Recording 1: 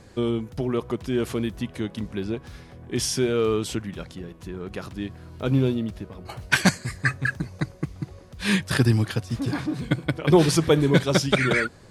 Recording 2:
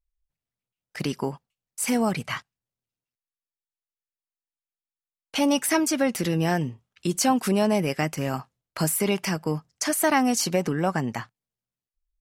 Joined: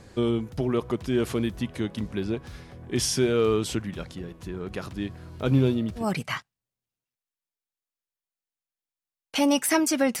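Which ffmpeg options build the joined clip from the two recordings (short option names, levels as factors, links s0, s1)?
-filter_complex "[0:a]apad=whole_dur=10.2,atrim=end=10.2,atrim=end=6.11,asetpts=PTS-STARTPTS[s0];[1:a]atrim=start=1.95:end=6.2,asetpts=PTS-STARTPTS[s1];[s0][s1]acrossfade=d=0.16:c1=tri:c2=tri"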